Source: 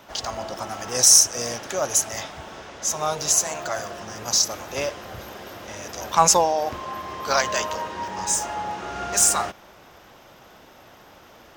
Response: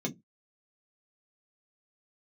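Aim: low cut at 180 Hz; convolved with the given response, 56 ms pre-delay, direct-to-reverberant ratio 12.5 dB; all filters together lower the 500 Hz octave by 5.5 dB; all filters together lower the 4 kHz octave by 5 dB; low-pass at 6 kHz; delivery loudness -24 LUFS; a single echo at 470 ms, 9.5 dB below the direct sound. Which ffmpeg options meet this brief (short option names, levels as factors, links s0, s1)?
-filter_complex "[0:a]highpass=180,lowpass=6000,equalizer=f=500:t=o:g=-7,equalizer=f=4000:t=o:g=-5,aecho=1:1:470:0.335,asplit=2[s0][s1];[1:a]atrim=start_sample=2205,adelay=56[s2];[s1][s2]afir=irnorm=-1:irlink=0,volume=0.158[s3];[s0][s3]amix=inputs=2:normalize=0,volume=1.26"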